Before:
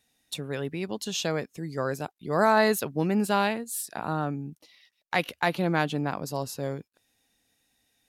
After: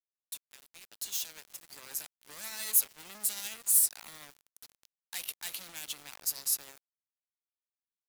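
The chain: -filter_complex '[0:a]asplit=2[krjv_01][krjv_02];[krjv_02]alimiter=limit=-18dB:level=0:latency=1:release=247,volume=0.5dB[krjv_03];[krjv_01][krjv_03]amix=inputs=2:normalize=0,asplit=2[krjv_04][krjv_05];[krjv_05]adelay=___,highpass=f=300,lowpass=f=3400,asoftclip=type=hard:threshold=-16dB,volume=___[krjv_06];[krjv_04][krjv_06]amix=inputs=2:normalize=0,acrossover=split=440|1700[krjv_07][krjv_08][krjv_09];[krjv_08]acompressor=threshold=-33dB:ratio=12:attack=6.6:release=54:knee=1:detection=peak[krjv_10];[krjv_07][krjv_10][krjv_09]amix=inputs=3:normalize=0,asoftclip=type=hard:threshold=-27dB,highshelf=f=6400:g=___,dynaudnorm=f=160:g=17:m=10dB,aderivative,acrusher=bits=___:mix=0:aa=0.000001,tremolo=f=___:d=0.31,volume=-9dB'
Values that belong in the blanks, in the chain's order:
320, -20dB, 7, 5, 13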